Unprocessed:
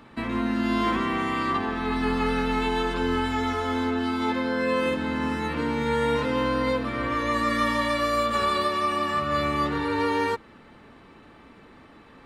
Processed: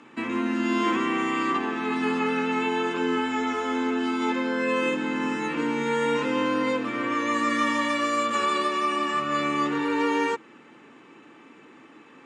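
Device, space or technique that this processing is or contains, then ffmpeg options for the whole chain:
television speaker: -filter_complex "[0:a]asettb=1/sr,asplit=3[link_01][link_02][link_03];[link_01]atrim=end=2.174[link_04];[link_02]atrim=start=2.17:end=3.91,asetpts=PTS-STARTPTS,afade=type=in:duration=0.004:curve=qsin,afade=type=out:start_time=1.736:duration=0.004:curve=qsin,acrossover=split=3400[link_05][link_06];[link_06]acompressor=threshold=-46dB:ratio=4:attack=1:release=60[link_07];[link_05][link_07]amix=inputs=2:normalize=0[link_08];[link_03]atrim=start=3.906[link_09];[link_04][link_08]acrossfade=duration=0.004:curve1=hsin:curve2=qsin[link_10];[link_10][link_09]acrossfade=duration=0.004:curve1=qsin:curve2=hsin,highpass=frequency=160:width=0.5412,highpass=frequency=160:width=1.3066,equalizer=frequency=190:width_type=q:width=4:gain=-6,equalizer=frequency=320:width_type=q:width=4:gain=5,equalizer=frequency=640:width_type=q:width=4:gain=-6,equalizer=frequency=2600:width_type=q:width=4:gain=5,equalizer=frequency=4200:width_type=q:width=4:gain=-7,equalizer=frequency=6900:width_type=q:width=4:gain=9,lowpass=frequency=8900:width=0.5412,lowpass=frequency=8900:width=1.3066"

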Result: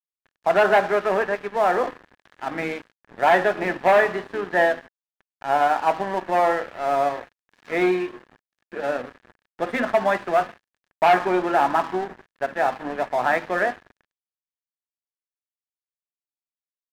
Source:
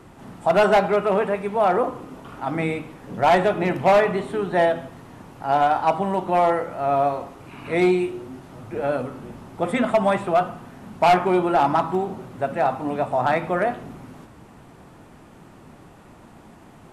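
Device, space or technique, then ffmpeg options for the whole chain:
pocket radio on a weak battery: -af "highpass=260,lowpass=3700,aeval=exprs='sgn(val(0))*max(abs(val(0))-0.0168,0)':channel_layout=same,equalizer=frequency=1700:width_type=o:width=0.26:gain=9.5"

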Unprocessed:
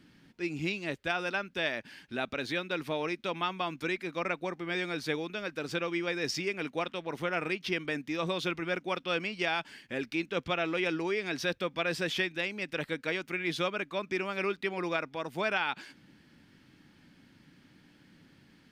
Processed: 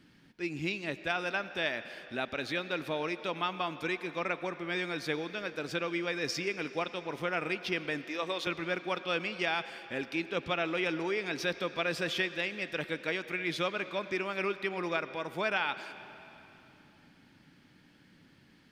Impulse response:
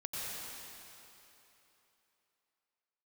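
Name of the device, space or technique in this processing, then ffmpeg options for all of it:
filtered reverb send: -filter_complex "[0:a]asettb=1/sr,asplit=3[link_01][link_02][link_03];[link_01]atrim=end=8.044[link_04];[link_02]atrim=start=8.04:end=8.47,asetpts=PTS-STARTPTS,afade=type=in:duration=0.004:curve=qsin,afade=type=out:start_time=0.426:duration=0.004:curve=qsin,highpass=350[link_05];[link_03]atrim=start=8.466[link_06];[link_04][link_05]acrossfade=duration=0.004:curve1=hsin:curve2=qsin[link_07];[link_07][link_06]acrossfade=duration=0.004:curve1=qsin:curve2=hsin,asplit=2[link_08][link_09];[link_09]highpass=frequency=210:width=0.5412,highpass=frequency=210:width=1.3066,lowpass=6100[link_10];[1:a]atrim=start_sample=2205[link_11];[link_10][link_11]afir=irnorm=-1:irlink=0,volume=-13.5dB[link_12];[link_08][link_12]amix=inputs=2:normalize=0,volume=-1.5dB"

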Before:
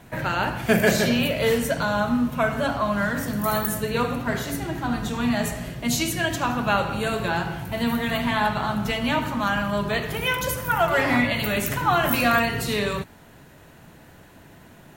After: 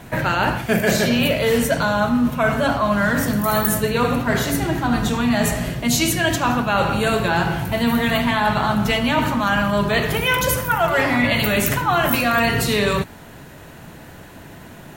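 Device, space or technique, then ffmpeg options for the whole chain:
compression on the reversed sound: -af "areverse,acompressor=threshold=-23dB:ratio=6,areverse,volume=8.5dB"

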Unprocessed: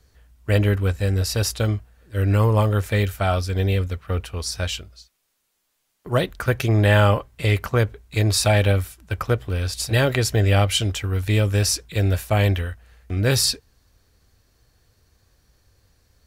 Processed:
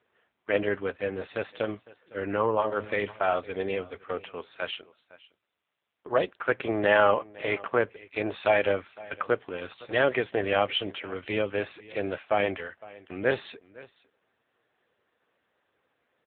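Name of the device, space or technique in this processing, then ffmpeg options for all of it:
satellite phone: -filter_complex "[0:a]asplit=3[link_01][link_02][link_03];[link_01]afade=type=out:start_time=2.55:duration=0.02[link_04];[link_02]bandreject=frequency=106.2:width_type=h:width=4,bandreject=frequency=212.4:width_type=h:width=4,bandreject=frequency=318.6:width_type=h:width=4,bandreject=frequency=424.8:width_type=h:width=4,bandreject=frequency=531:width_type=h:width=4,bandreject=frequency=637.2:width_type=h:width=4,bandreject=frequency=743.4:width_type=h:width=4,bandreject=frequency=849.6:width_type=h:width=4,bandreject=frequency=955.8:width_type=h:width=4,bandreject=frequency=1062:width_type=h:width=4,bandreject=frequency=1168.2:width_type=h:width=4,bandreject=frequency=1274.4:width_type=h:width=4,bandreject=frequency=1380.6:width_type=h:width=4,bandreject=frequency=1486.8:width_type=h:width=4,bandreject=frequency=1593:width_type=h:width=4,bandreject=frequency=1699.2:width_type=h:width=4,afade=type=in:start_time=2.55:duration=0.02,afade=type=out:start_time=3.39:duration=0.02[link_05];[link_03]afade=type=in:start_time=3.39:duration=0.02[link_06];[link_04][link_05][link_06]amix=inputs=3:normalize=0,highpass=380,lowpass=3100,aecho=1:1:509:0.0891" -ar 8000 -c:a libopencore_amrnb -b:a 6700

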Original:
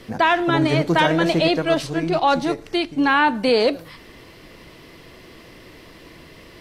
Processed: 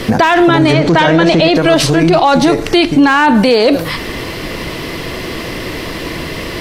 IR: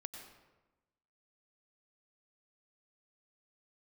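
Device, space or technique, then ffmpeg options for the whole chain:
loud club master: -filter_complex "[0:a]acompressor=threshold=-24dB:ratio=1.5,asoftclip=type=hard:threshold=-13dB,alimiter=level_in=23dB:limit=-1dB:release=50:level=0:latency=1,asplit=3[link_01][link_02][link_03];[link_01]afade=type=out:start_time=0.72:duration=0.02[link_04];[link_02]lowpass=6500,afade=type=in:start_time=0.72:duration=0.02,afade=type=out:start_time=1.54:duration=0.02[link_05];[link_03]afade=type=in:start_time=1.54:duration=0.02[link_06];[link_04][link_05][link_06]amix=inputs=3:normalize=0,volume=-1dB"

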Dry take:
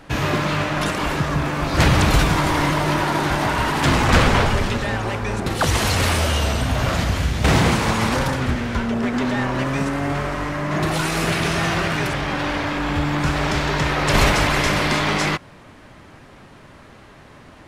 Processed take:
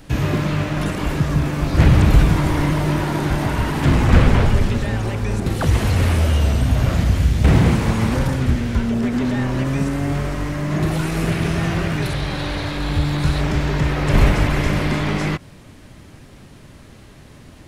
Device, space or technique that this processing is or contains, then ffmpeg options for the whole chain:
smiley-face EQ: -filter_complex "[0:a]acrossover=split=2500[link_01][link_02];[link_02]acompressor=threshold=-40dB:ratio=4:attack=1:release=60[link_03];[link_01][link_03]amix=inputs=2:normalize=0,asettb=1/sr,asplit=3[link_04][link_05][link_06];[link_04]atrim=end=12.024[link_07];[link_05]atrim=start=12.02:end=13.41,asetpts=PTS-STARTPTS,afade=type=in:duration=0.004:curve=qsin,afade=type=out:start_time=1.386:duration=0.004:curve=qsin,equalizer=frequency=250:width_type=o:width=0.33:gain=-11,equalizer=frequency=4000:width_type=o:width=0.33:gain=11,equalizer=frequency=10000:width_type=o:width=0.33:gain=6[link_08];[link_06]atrim=start=13.406[link_09];[link_07][link_08]acrossfade=duration=0.004:curve1=hsin:curve2=qsin[link_10];[link_10][link_09]acrossfade=duration=0.004:curve1=qsin:curve2=hsin,lowshelf=frequency=160:gain=4,equalizer=frequency=1100:width_type=o:width=2.4:gain=-8.5,highshelf=frequency=7500:gain=7,volume=2.5dB"

